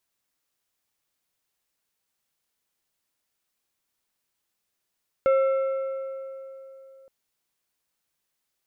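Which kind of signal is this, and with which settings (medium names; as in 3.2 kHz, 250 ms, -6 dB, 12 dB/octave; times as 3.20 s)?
metal hit plate, length 1.82 s, lowest mode 536 Hz, decay 3.27 s, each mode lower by 11 dB, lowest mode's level -16 dB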